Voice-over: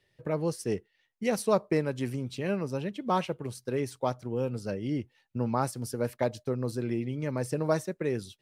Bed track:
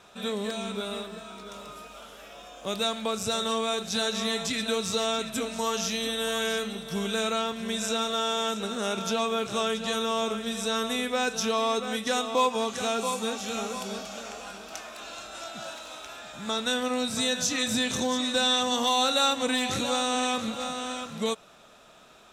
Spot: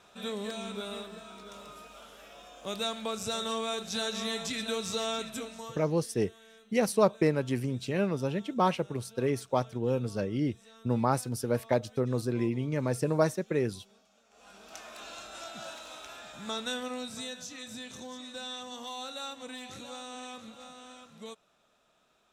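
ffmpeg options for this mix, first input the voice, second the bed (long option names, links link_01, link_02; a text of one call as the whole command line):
ffmpeg -i stem1.wav -i stem2.wav -filter_complex "[0:a]adelay=5500,volume=1.5dB[link_01];[1:a]volume=19dB,afade=type=out:start_time=5.22:duration=0.61:silence=0.0707946,afade=type=in:start_time=14.3:duration=0.67:silence=0.0630957,afade=type=out:start_time=16.23:duration=1.23:silence=0.251189[link_02];[link_01][link_02]amix=inputs=2:normalize=0" out.wav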